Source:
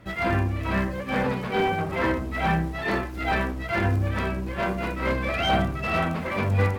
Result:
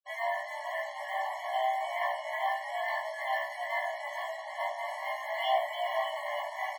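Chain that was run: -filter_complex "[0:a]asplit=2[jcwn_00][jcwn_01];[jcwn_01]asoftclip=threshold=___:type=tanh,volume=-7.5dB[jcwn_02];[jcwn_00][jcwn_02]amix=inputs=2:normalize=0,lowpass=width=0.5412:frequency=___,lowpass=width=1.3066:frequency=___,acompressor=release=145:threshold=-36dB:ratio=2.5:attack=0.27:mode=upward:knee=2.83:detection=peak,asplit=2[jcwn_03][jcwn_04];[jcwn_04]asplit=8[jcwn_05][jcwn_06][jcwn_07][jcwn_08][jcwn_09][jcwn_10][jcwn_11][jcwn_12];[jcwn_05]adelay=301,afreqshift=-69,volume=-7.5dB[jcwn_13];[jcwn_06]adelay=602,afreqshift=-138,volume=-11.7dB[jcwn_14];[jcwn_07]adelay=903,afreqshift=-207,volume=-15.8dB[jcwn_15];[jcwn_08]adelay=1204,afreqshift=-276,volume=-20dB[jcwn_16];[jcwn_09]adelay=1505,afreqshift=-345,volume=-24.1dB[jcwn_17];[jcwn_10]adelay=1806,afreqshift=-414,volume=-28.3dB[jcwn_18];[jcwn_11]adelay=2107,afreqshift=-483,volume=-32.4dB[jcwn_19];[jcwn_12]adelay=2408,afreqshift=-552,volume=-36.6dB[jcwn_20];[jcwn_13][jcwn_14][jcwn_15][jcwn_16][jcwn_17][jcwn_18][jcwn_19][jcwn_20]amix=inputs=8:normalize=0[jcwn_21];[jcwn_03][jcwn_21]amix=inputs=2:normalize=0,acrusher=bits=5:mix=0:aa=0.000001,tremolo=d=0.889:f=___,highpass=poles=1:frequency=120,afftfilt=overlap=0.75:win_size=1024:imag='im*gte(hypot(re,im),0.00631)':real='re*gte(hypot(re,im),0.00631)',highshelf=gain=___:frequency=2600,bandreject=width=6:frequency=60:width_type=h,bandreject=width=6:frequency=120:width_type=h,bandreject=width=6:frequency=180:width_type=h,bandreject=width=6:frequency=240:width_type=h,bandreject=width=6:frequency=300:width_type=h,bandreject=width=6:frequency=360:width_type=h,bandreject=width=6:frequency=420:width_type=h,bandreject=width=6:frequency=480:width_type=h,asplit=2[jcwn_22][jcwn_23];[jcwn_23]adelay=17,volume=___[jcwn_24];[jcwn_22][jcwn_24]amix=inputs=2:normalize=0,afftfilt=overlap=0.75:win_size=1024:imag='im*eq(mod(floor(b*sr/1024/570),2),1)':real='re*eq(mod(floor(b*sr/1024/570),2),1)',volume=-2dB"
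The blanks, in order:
-29.5dB, 4400, 4400, 260, -5, -3dB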